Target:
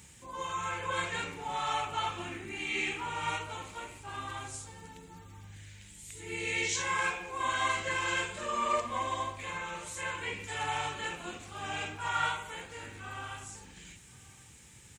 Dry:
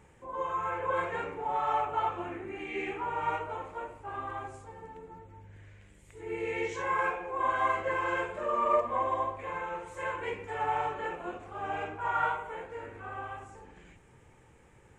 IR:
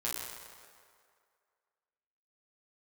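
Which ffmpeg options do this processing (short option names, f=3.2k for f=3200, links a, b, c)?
-filter_complex "[0:a]highpass=48,asettb=1/sr,asplit=3[a][b][c];[a]atrim=end=9.514[d];[b]atrim=start=9.51:end=10.4,asetpts=PTS-STARTPTS,afade=t=in:d=0.004:c=qsin,afade=t=out:st=0.886:d=0.004:c=qsin,acrossover=split=2600[e][f];[f]acompressor=threshold=-55dB:ratio=4:attack=1:release=60[g];[e][g]amix=inputs=2:normalize=0[h];[c]atrim=start=10.396[i];[d][h]acrossfade=d=0.004:c1=hsin:c2=qsin[j];[j][i]acrossfade=d=0.004:c1=qsin:c2=hsin,firequalizer=gain_entry='entry(210,0);entry(430,-11);entry(3900,15)':delay=0.05:min_phase=1,asplit=2[k][l];[l]aecho=0:1:1077:0.0668[m];[k][m]amix=inputs=2:normalize=0,volume=3dB"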